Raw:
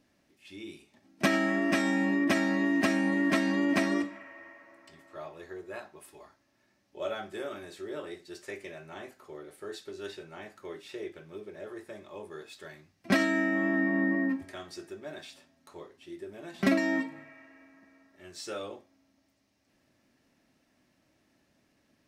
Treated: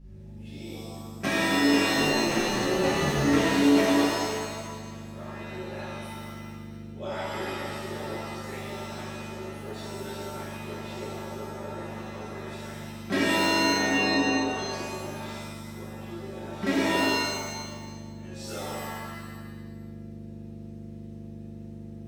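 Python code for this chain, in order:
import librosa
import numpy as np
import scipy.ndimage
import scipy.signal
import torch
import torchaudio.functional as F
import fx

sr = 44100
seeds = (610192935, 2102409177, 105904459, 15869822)

y = fx.add_hum(x, sr, base_hz=50, snr_db=10)
y = fx.ring_mod(y, sr, carrier_hz=fx.line((1.94, 43.0), (3.22, 150.0)), at=(1.94, 3.22), fade=0.02)
y = fx.rev_shimmer(y, sr, seeds[0], rt60_s=1.3, semitones=7, shimmer_db=-2, drr_db=-8.0)
y = F.gain(torch.from_numpy(y), -7.5).numpy()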